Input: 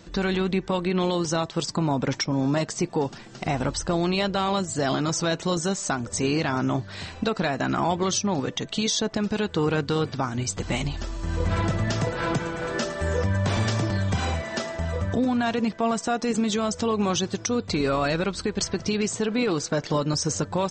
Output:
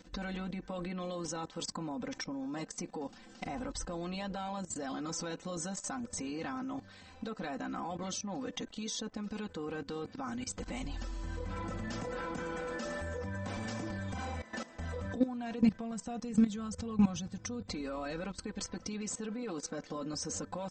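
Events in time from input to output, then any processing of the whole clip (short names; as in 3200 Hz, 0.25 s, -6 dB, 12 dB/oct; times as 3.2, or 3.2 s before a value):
15.61–17.66 resonant low shelf 210 Hz +10 dB, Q 1.5
whole clip: dynamic EQ 3800 Hz, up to -5 dB, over -41 dBFS, Q 0.86; comb 3.9 ms, depth 83%; level quantiser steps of 16 dB; gain -6.5 dB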